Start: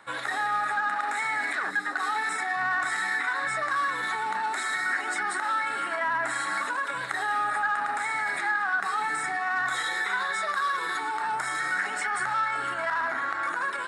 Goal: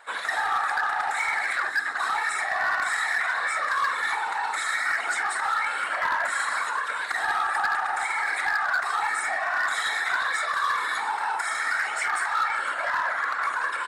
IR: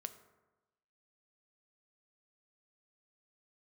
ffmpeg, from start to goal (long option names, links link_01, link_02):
-filter_complex "[0:a]highpass=640,afftfilt=real='hypot(re,im)*cos(2*PI*random(0))':imag='hypot(re,im)*sin(2*PI*random(1))':win_size=512:overlap=0.75,asplit=2[link_01][link_02];[link_02]adelay=47,volume=-12.5dB[link_03];[link_01][link_03]amix=inputs=2:normalize=0,volume=27.5dB,asoftclip=hard,volume=-27.5dB,volume=8.5dB"